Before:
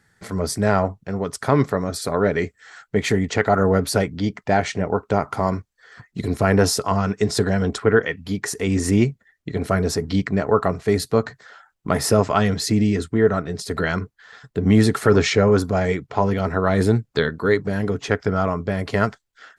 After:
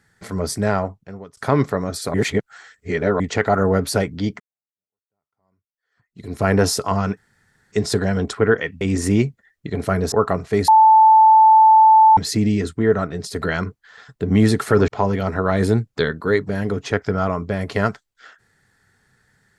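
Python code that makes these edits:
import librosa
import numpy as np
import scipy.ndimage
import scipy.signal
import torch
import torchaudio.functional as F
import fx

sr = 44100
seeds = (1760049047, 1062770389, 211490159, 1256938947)

y = fx.edit(x, sr, fx.fade_out_to(start_s=0.58, length_s=0.79, floor_db=-22.5),
    fx.reverse_span(start_s=2.14, length_s=1.06),
    fx.fade_in_span(start_s=4.4, length_s=2.05, curve='exp'),
    fx.insert_room_tone(at_s=7.17, length_s=0.55),
    fx.cut(start_s=8.26, length_s=0.37),
    fx.cut(start_s=9.94, length_s=0.53),
    fx.bleep(start_s=11.03, length_s=1.49, hz=878.0, db=-7.0),
    fx.cut(start_s=15.23, length_s=0.83), tone=tone)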